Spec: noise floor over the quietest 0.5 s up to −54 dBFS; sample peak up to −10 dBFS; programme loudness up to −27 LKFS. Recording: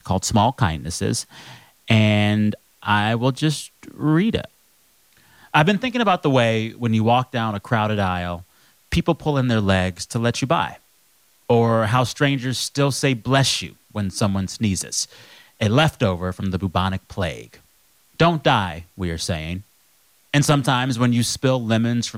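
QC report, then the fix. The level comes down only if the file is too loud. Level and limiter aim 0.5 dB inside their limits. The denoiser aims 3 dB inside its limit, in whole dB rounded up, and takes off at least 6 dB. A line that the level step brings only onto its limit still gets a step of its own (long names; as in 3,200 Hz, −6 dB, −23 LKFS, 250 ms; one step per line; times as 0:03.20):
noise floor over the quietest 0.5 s −58 dBFS: in spec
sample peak −5.5 dBFS: out of spec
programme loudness −20.5 LKFS: out of spec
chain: level −7 dB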